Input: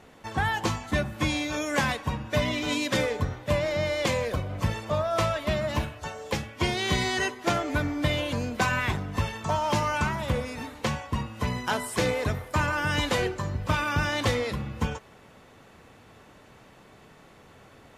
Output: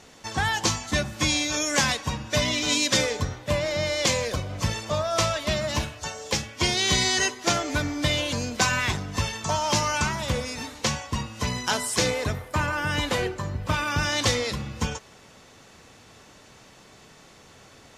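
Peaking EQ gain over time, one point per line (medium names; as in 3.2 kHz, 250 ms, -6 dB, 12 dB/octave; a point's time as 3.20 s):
peaking EQ 5.9 kHz 1.5 oct
3.20 s +14 dB
3.50 s +6.5 dB
4.09 s +13 dB
11.97 s +13 dB
12.49 s +1.5 dB
13.61 s +1.5 dB
14.20 s +12.5 dB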